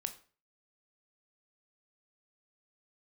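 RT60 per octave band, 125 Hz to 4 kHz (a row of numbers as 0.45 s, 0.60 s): 0.50 s, 0.45 s, 0.40 s, 0.40 s, 0.40 s, 0.35 s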